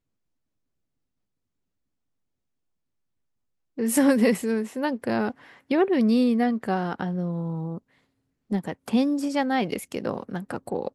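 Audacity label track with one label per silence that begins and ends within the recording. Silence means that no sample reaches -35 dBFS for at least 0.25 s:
5.310000	5.710000	silence
7.780000	8.510000	silence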